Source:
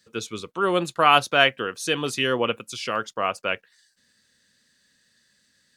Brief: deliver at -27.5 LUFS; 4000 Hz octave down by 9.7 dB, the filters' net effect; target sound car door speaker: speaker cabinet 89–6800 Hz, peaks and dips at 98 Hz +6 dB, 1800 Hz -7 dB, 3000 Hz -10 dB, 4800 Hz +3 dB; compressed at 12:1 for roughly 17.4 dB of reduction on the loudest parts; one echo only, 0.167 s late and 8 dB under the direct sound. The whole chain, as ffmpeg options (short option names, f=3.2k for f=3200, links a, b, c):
-af "equalizer=f=4k:t=o:g=-3,acompressor=threshold=-29dB:ratio=12,highpass=89,equalizer=f=98:t=q:w=4:g=6,equalizer=f=1.8k:t=q:w=4:g=-7,equalizer=f=3k:t=q:w=4:g=-10,equalizer=f=4.8k:t=q:w=4:g=3,lowpass=f=6.8k:w=0.5412,lowpass=f=6.8k:w=1.3066,aecho=1:1:167:0.398,volume=7.5dB"